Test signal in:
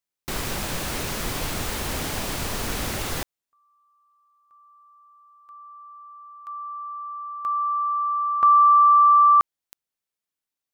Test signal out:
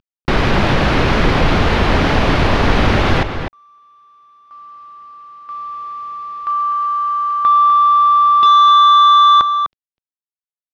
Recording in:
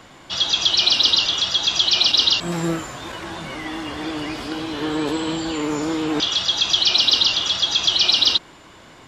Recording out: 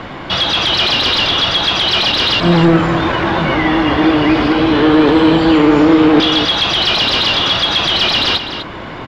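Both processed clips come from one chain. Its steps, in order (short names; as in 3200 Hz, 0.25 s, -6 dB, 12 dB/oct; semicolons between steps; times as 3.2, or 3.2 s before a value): CVSD 64 kbps; in parallel at -1.5 dB: compressor, threshold -29 dBFS; on the sum: sine folder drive 8 dB, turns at -5.5 dBFS; air absorption 290 m; outdoor echo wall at 43 m, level -8 dB; gain +2 dB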